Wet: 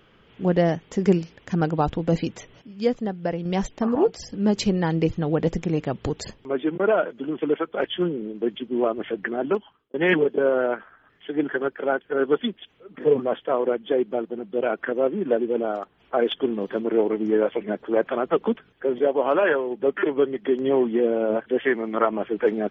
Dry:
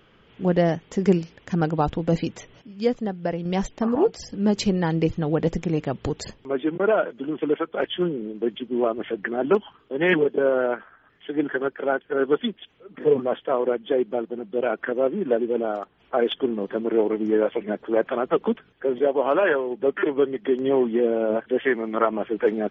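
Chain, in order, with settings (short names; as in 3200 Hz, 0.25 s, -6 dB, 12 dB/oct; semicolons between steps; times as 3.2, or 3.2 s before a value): 9.3–9.94 fade out; 16.41–16.82 high shelf 4500 Hz +10.5 dB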